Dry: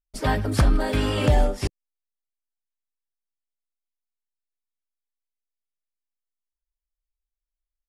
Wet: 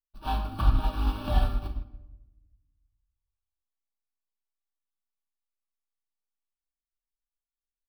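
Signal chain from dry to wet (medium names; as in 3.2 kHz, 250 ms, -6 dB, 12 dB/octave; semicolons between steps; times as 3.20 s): median filter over 25 samples; resonant low shelf 430 Hz -8 dB, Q 1.5; band-stop 880 Hz, Q 22; comb 3.5 ms, depth 63%; in parallel at -9.5 dB: Schmitt trigger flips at -37 dBFS; on the sum: static phaser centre 2 kHz, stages 6; simulated room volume 520 m³, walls mixed, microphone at 1.1 m; upward expansion 1.5:1, over -38 dBFS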